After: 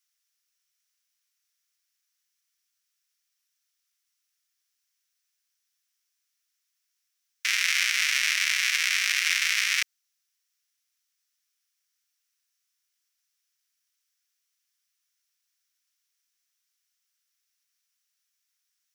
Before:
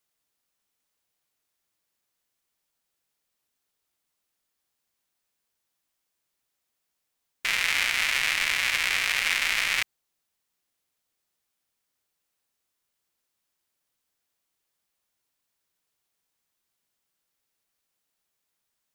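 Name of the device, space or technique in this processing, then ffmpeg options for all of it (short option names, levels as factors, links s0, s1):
headphones lying on a table: -af "highpass=f=1400:w=0.5412,highpass=f=1400:w=1.3066,equalizer=f=5700:t=o:w=0.35:g=8.5"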